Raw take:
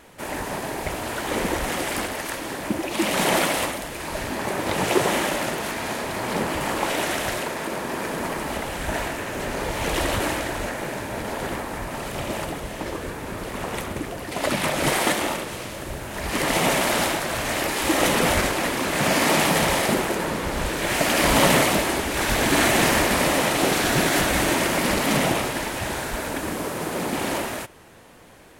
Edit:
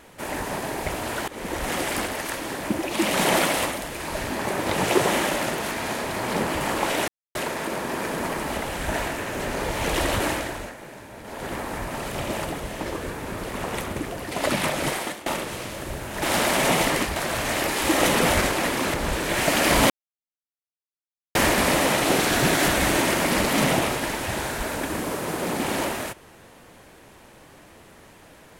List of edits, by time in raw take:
1.28–1.74 s: fade in, from -19.5 dB
7.08–7.35 s: mute
10.31–11.67 s: dip -11.5 dB, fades 0.45 s
14.60–15.26 s: fade out, to -20.5 dB
16.22–17.16 s: reverse
18.94–20.47 s: delete
21.43–22.88 s: mute

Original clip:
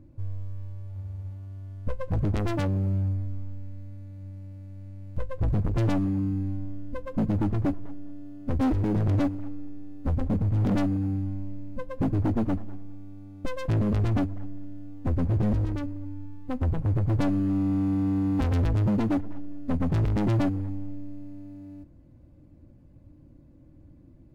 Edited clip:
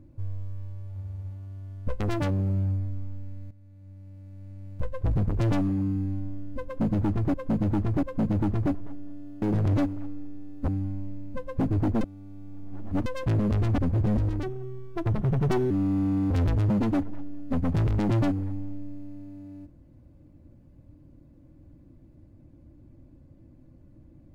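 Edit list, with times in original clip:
2.00–2.37 s: delete
3.88–5.03 s: fade in, from -13.5 dB
7.02–7.71 s: loop, 3 plays
8.41–8.84 s: delete
10.10–11.10 s: delete
12.43–13.48 s: reverse
14.20–15.14 s: delete
15.79–17.46 s: speed 131%
18.06–18.48 s: delete

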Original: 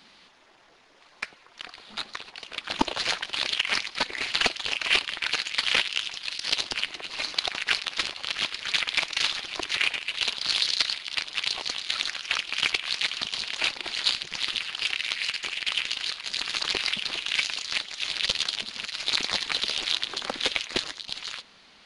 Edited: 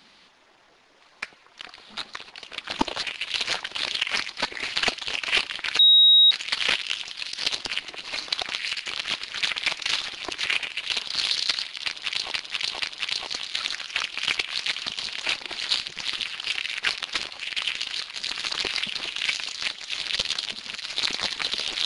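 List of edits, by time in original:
5.37 s: add tone 3.8 kHz -11.5 dBFS 0.52 s
7.59–8.24 s: swap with 15.10–15.50 s
9.90–10.32 s: copy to 3.03 s
11.14–11.62 s: loop, 3 plays

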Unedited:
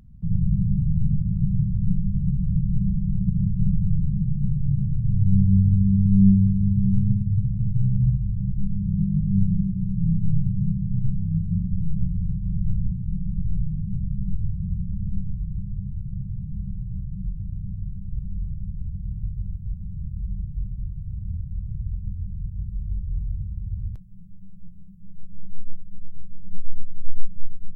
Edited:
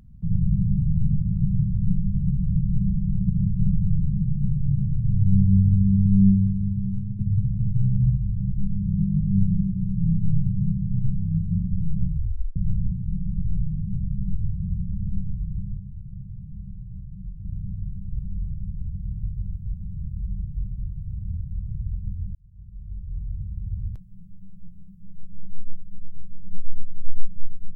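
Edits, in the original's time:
6.06–7.19 s: fade out, to -11.5 dB
12.08 s: tape stop 0.48 s
15.77–17.45 s: gain -6.5 dB
22.35–23.66 s: fade in

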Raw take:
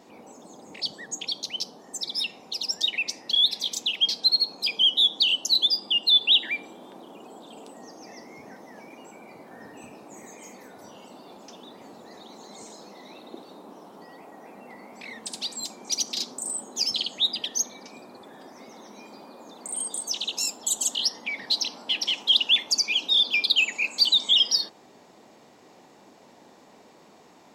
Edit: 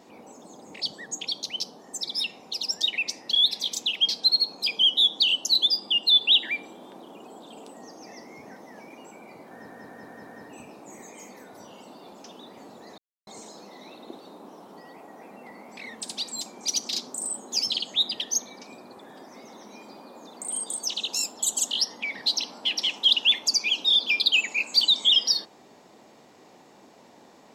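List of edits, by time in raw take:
9.51 s: stutter 0.19 s, 5 plays
12.22–12.51 s: mute

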